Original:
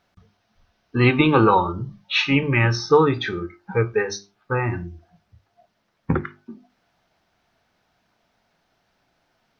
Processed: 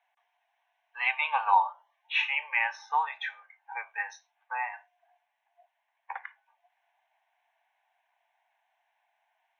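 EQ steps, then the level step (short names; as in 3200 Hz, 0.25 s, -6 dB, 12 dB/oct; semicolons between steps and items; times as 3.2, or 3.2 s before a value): steep high-pass 730 Hz 48 dB/oct; high shelf 3100 Hz -11.5 dB; fixed phaser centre 1300 Hz, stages 6; 0.0 dB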